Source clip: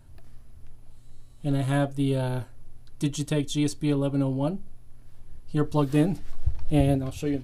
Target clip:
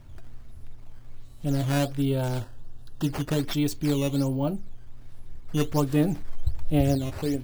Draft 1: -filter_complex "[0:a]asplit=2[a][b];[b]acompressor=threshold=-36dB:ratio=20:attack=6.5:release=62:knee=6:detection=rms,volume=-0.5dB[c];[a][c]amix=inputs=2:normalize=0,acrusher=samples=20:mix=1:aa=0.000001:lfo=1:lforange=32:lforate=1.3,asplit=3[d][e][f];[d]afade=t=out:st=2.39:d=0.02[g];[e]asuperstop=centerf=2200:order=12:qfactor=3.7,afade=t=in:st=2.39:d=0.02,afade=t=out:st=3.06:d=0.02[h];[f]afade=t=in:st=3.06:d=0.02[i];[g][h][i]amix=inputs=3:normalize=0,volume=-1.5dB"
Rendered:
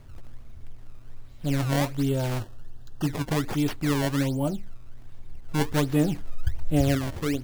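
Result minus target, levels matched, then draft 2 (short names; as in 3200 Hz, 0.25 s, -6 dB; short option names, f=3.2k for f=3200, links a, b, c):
decimation with a swept rate: distortion +6 dB
-filter_complex "[0:a]asplit=2[a][b];[b]acompressor=threshold=-36dB:ratio=20:attack=6.5:release=62:knee=6:detection=rms,volume=-0.5dB[c];[a][c]amix=inputs=2:normalize=0,acrusher=samples=8:mix=1:aa=0.000001:lfo=1:lforange=12.8:lforate=1.3,asplit=3[d][e][f];[d]afade=t=out:st=2.39:d=0.02[g];[e]asuperstop=centerf=2200:order=12:qfactor=3.7,afade=t=in:st=2.39:d=0.02,afade=t=out:st=3.06:d=0.02[h];[f]afade=t=in:st=3.06:d=0.02[i];[g][h][i]amix=inputs=3:normalize=0,volume=-1.5dB"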